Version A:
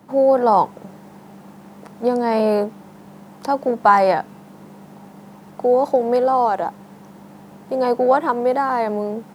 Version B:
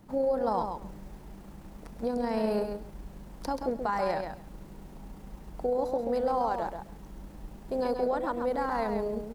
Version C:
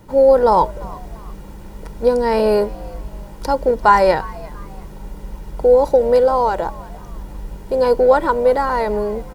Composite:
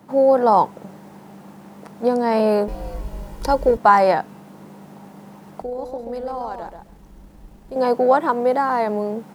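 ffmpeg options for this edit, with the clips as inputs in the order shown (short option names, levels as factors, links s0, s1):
-filter_complex "[0:a]asplit=3[s0][s1][s2];[s0]atrim=end=2.682[s3];[2:a]atrim=start=2.678:end=3.772[s4];[s1]atrim=start=3.768:end=5.622[s5];[1:a]atrim=start=5.618:end=7.762[s6];[s2]atrim=start=7.758[s7];[s3][s4]acrossfade=d=0.004:c1=hsin:c2=hsin[s8];[s8][s5]acrossfade=d=0.004:c1=hsin:c2=hsin[s9];[s9][s6]acrossfade=d=0.004:c1=hsin:c2=hsin[s10];[s10][s7]acrossfade=d=0.004:c1=hsin:c2=hsin"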